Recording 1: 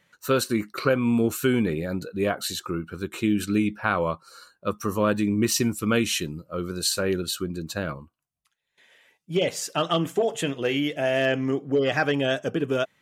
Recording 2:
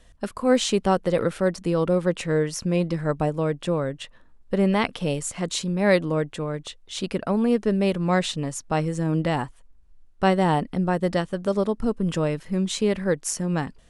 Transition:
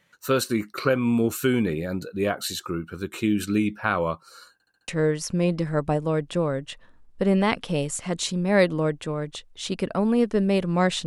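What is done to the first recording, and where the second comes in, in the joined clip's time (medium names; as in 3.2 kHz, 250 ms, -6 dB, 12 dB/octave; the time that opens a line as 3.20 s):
recording 1
4.53 s: stutter in place 0.07 s, 5 plays
4.88 s: go over to recording 2 from 2.20 s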